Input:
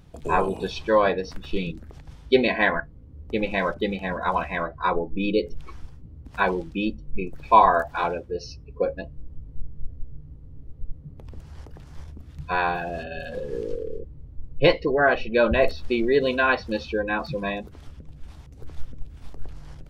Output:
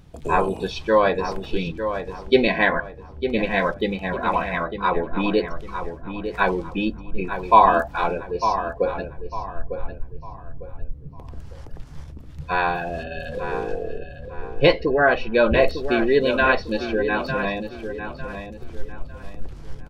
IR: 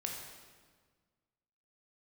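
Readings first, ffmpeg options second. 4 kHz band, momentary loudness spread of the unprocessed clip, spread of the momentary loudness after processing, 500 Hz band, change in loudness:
+2.5 dB, 23 LU, 21 LU, +2.5 dB, +2.0 dB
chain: -filter_complex "[0:a]asplit=2[a][b];[b]adelay=902,lowpass=f=3.1k:p=1,volume=-8.5dB,asplit=2[c][d];[d]adelay=902,lowpass=f=3.1k:p=1,volume=0.34,asplit=2[e][f];[f]adelay=902,lowpass=f=3.1k:p=1,volume=0.34,asplit=2[g][h];[h]adelay=902,lowpass=f=3.1k:p=1,volume=0.34[i];[a][c][e][g][i]amix=inputs=5:normalize=0,volume=2dB"

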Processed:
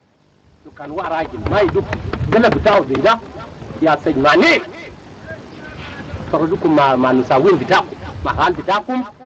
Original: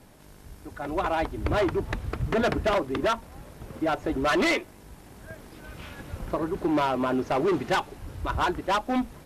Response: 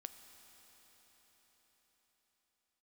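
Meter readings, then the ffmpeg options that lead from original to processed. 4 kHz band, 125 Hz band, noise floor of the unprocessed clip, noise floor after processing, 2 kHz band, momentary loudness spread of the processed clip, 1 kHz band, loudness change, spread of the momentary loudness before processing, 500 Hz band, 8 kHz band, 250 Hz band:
+11.0 dB, +10.0 dB, -50 dBFS, -53 dBFS, +12.0 dB, 19 LU, +12.0 dB, +12.0 dB, 20 LU, +12.5 dB, n/a, +11.5 dB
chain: -filter_complex "[0:a]bandreject=f=60:t=h:w=6,bandreject=f=120:t=h:w=6,bandreject=f=180:t=h:w=6,adynamicequalizer=threshold=0.00794:dfrequency=300:dqfactor=5.2:tfrequency=300:tqfactor=5.2:attack=5:release=100:ratio=0.375:range=2.5:mode=cutabove:tftype=bell,dynaudnorm=f=500:g=5:m=16.5dB,asplit=2[a][b];[b]adelay=310,highpass=300,lowpass=3.4k,asoftclip=type=hard:threshold=-11.5dB,volume=-17dB[c];[a][c]amix=inputs=2:normalize=0,volume=-1.5dB" -ar 16000 -c:a libspeex -b:a 21k

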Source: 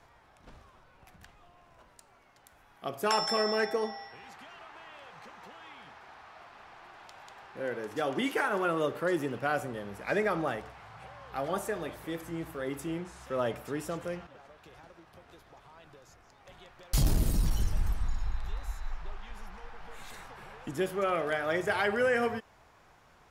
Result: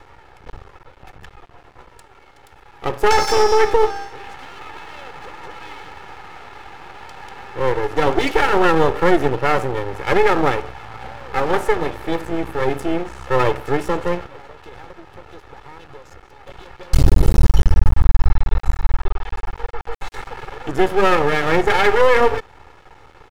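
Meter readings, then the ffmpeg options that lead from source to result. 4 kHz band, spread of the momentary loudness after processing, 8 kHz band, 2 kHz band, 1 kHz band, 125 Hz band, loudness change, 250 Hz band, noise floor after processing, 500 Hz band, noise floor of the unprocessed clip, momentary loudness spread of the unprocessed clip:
+10.0 dB, 21 LU, +9.0 dB, +12.0 dB, +15.0 dB, +14.5 dB, +13.5 dB, +12.0 dB, -48 dBFS, +14.0 dB, -61 dBFS, 21 LU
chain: -af "lowpass=f=2k:p=1,aecho=1:1:2.3:0.98,aeval=exprs='max(val(0),0)':c=same,alimiter=level_in=17.5dB:limit=-1dB:release=50:level=0:latency=1,volume=-1dB"

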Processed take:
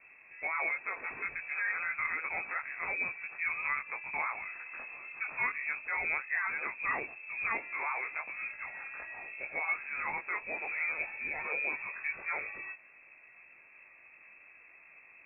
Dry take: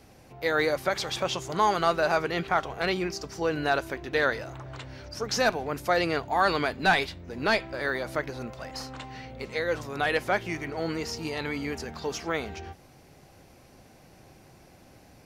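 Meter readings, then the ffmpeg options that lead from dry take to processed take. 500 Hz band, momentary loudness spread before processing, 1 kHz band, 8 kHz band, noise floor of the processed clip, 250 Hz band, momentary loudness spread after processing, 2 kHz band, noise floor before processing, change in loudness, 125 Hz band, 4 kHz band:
-20.5 dB, 14 LU, -11.0 dB, under -40 dB, -58 dBFS, -23.5 dB, 20 LU, -2.0 dB, -55 dBFS, -6.5 dB, under -25 dB, under -40 dB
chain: -af "alimiter=limit=-21dB:level=0:latency=1:release=184,flanger=delay=18:depth=3.7:speed=2.8,lowpass=f=2.3k:t=q:w=0.5098,lowpass=f=2.3k:t=q:w=0.6013,lowpass=f=2.3k:t=q:w=0.9,lowpass=f=2.3k:t=q:w=2.563,afreqshift=-2700"

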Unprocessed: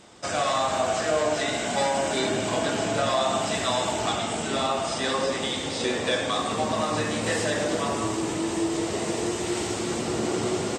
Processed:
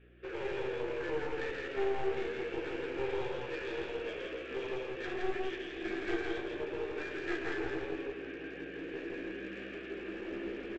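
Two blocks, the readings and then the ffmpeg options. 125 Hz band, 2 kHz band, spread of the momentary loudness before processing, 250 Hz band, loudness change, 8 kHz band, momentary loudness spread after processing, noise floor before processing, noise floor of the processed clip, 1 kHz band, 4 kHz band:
-17.0 dB, -9.0 dB, 4 LU, -11.5 dB, -12.5 dB, under -30 dB, 7 LU, -30 dBFS, -45 dBFS, -18.0 dB, -19.5 dB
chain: -filter_complex "[0:a]asplit=3[a][b][c];[a]bandpass=f=530:t=q:w=8,volume=0dB[d];[b]bandpass=f=1.84k:t=q:w=8,volume=-6dB[e];[c]bandpass=f=2.48k:t=q:w=8,volume=-9dB[f];[d][e][f]amix=inputs=3:normalize=0,highpass=f=510:t=q:w=0.5412,highpass=f=510:t=q:w=1.307,lowpass=f=3.4k:t=q:w=0.5176,lowpass=f=3.4k:t=q:w=0.7071,lowpass=f=3.4k:t=q:w=1.932,afreqshift=-160,aresample=16000,aeval=exprs='clip(val(0),-1,0.00944)':c=same,aresample=44100,asplit=2[g][h];[h]adelay=15,volume=-6.5dB[i];[g][i]amix=inputs=2:normalize=0,asplit=2[j][k];[k]aecho=0:1:167:0.708[l];[j][l]amix=inputs=2:normalize=0,aeval=exprs='val(0)+0.001*(sin(2*PI*60*n/s)+sin(2*PI*2*60*n/s)/2+sin(2*PI*3*60*n/s)/3+sin(2*PI*4*60*n/s)/4+sin(2*PI*5*60*n/s)/5)':c=same"

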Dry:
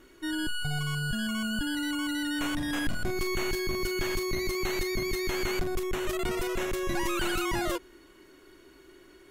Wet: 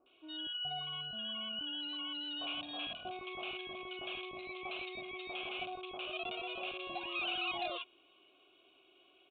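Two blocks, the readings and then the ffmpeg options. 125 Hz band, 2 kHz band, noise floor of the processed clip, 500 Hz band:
-24.0 dB, -9.5 dB, -67 dBFS, -14.0 dB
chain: -filter_complex "[0:a]asplit=3[a][b][c];[a]bandpass=f=730:t=q:w=8,volume=0dB[d];[b]bandpass=f=1.09k:t=q:w=8,volume=-6dB[e];[c]bandpass=f=2.44k:t=q:w=8,volume=-9dB[f];[d][e][f]amix=inputs=3:normalize=0,lowshelf=f=260:g=5.5,acrossover=split=1100[g][h];[h]adelay=60[i];[g][i]amix=inputs=2:normalize=0,aresample=8000,volume=34dB,asoftclip=hard,volume=-34dB,aresample=44100,aexciter=amount=7.9:drive=6.6:freq=2.7k,volume=1dB"

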